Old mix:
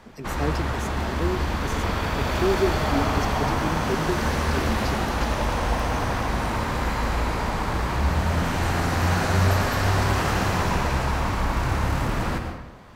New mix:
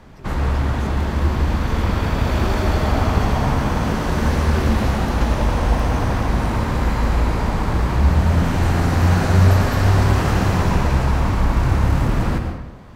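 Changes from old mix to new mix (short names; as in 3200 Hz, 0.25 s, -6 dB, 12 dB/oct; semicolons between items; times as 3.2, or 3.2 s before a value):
speech -9.5 dB; background: add low shelf 410 Hz +8.5 dB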